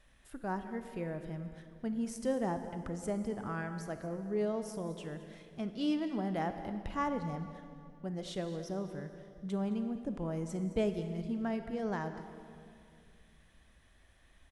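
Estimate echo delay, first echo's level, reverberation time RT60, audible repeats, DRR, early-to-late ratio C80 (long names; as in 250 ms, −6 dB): 216 ms, −16.0 dB, 2.4 s, 1, 7.5 dB, 9.0 dB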